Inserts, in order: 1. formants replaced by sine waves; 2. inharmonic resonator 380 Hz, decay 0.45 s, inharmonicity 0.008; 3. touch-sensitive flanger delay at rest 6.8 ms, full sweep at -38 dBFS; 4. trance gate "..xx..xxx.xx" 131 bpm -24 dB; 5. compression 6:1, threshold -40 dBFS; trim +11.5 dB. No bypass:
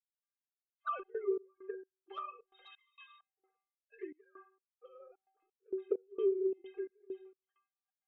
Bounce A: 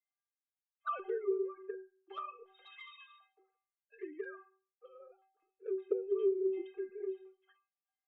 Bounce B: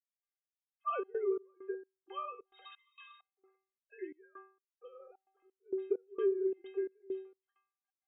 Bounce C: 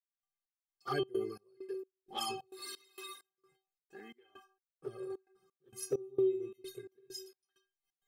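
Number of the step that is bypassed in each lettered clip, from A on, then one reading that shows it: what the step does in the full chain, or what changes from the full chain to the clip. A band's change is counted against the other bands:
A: 4, 2 kHz band +1.5 dB; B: 3, crest factor change -2.5 dB; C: 1, 2 kHz band +4.0 dB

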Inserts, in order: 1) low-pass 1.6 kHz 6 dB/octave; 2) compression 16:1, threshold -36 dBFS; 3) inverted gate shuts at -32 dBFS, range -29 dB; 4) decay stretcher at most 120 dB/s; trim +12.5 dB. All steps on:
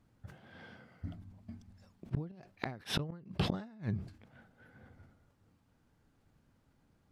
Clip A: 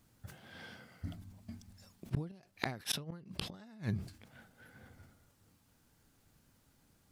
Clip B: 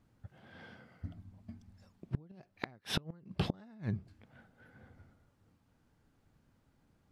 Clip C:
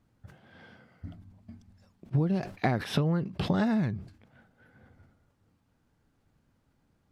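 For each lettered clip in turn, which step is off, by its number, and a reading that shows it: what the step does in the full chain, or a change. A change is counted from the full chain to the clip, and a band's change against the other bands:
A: 1, 8 kHz band +10.0 dB; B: 4, momentary loudness spread change +2 LU; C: 3, crest factor change -5.5 dB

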